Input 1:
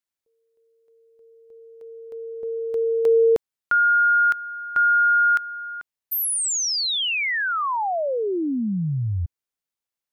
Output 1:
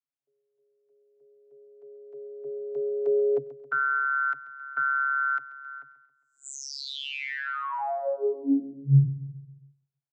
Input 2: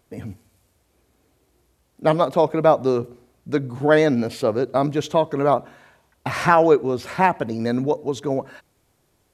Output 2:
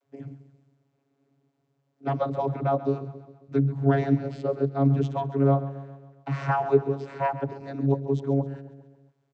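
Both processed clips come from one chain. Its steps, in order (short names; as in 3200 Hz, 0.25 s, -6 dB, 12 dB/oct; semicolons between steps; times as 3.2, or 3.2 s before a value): on a send: feedback echo 0.135 s, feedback 53%, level -15 dB; on the sum: vocoder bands 32, saw 138 Hz; gain -4.5 dB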